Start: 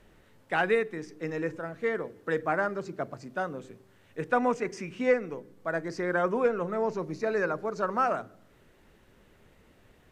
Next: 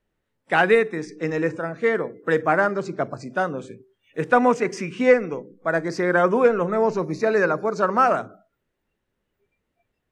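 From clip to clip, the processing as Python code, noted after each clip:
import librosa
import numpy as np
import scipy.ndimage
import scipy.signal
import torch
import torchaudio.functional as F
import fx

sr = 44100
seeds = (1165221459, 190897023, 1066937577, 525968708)

y = fx.noise_reduce_blind(x, sr, reduce_db=26)
y = y * librosa.db_to_amplitude(8.5)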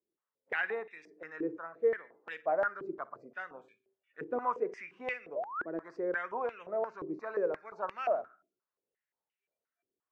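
y = fx.spec_paint(x, sr, seeds[0], shape='rise', start_s=5.35, length_s=0.31, low_hz=550.0, high_hz=1800.0, level_db=-27.0)
y = fx.echo_feedback(y, sr, ms=62, feedback_pct=47, wet_db=-22.0)
y = fx.filter_held_bandpass(y, sr, hz=5.7, low_hz=360.0, high_hz=2600.0)
y = y * librosa.db_to_amplitude(-5.5)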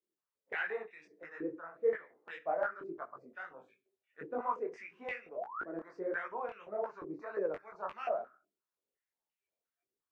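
y = fx.detune_double(x, sr, cents=56)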